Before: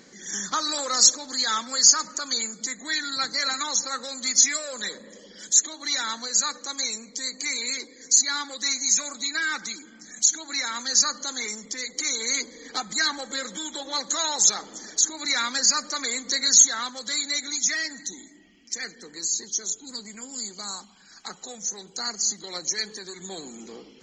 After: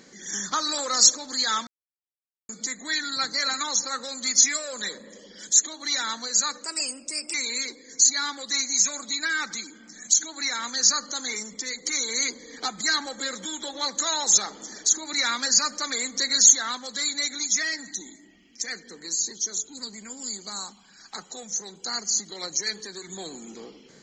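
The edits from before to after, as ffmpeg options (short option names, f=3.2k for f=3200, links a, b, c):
-filter_complex "[0:a]asplit=5[a][b][c][d][e];[a]atrim=end=1.67,asetpts=PTS-STARTPTS,afade=t=out:st=1.666:d=0.004:c=hsin[f];[b]atrim=start=1.67:end=2.49,asetpts=PTS-STARTPTS,volume=0[g];[c]atrim=start=2.49:end=6.644,asetpts=PTS-STARTPTS,afade=t=in:d=0.004:c=hsin[h];[d]atrim=start=6.64:end=7.46,asetpts=PTS-STARTPTS,asetrate=51597,aresample=44100[i];[e]atrim=start=7.456[j];[f][g][h]concat=n=3:v=0:a=1[k];[k][i]acrossfade=d=0.004:c1=hsin:c2=hsin[l];[l][j]acrossfade=d=0.004:c1=hsin:c2=hsin"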